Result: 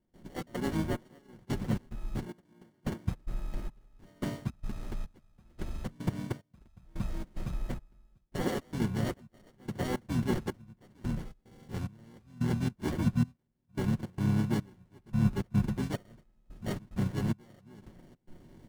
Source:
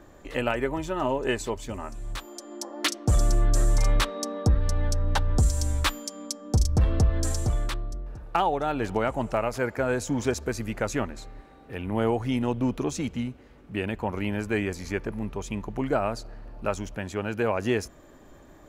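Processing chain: reverse; compressor 16:1, threshold -31 dBFS, peak gain reduction 15 dB; reverse; spectral noise reduction 8 dB; sample-and-hold 35×; soft clip -25 dBFS, distortion -23 dB; dynamic EQ 1700 Hz, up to +3 dB, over -55 dBFS, Q 1; comb 5.5 ms, depth 56%; step gate ".xx.xxx..." 110 bpm -24 dB; bell 230 Hz +13.5 dB 1.1 oct; harmoniser -12 st -2 dB, -7 st -2 dB, -4 st -11 dB; gain -5 dB

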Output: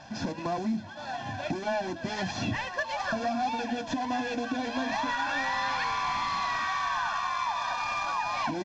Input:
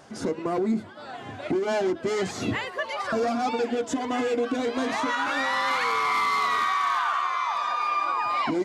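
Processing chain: CVSD 32 kbps; comb 1.2 ms, depth 85%; compressor 2.5:1, threshold -29 dBFS, peak gain reduction 7 dB

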